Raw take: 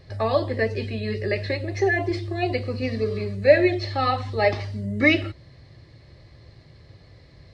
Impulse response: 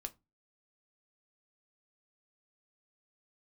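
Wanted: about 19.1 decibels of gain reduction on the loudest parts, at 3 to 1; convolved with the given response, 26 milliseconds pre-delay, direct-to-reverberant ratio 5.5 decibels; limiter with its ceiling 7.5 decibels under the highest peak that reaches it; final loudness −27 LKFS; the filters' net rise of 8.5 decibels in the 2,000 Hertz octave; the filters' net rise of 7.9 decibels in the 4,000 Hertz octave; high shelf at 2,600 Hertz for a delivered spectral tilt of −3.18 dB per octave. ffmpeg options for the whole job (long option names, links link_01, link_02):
-filter_complex "[0:a]equalizer=frequency=2000:width_type=o:gain=7,highshelf=frequency=2600:gain=3.5,equalizer=frequency=4000:width_type=o:gain=4.5,acompressor=threshold=-34dB:ratio=3,alimiter=level_in=2dB:limit=-24dB:level=0:latency=1,volume=-2dB,asplit=2[link_01][link_02];[1:a]atrim=start_sample=2205,adelay=26[link_03];[link_02][link_03]afir=irnorm=-1:irlink=0,volume=-2.5dB[link_04];[link_01][link_04]amix=inputs=2:normalize=0,volume=8dB"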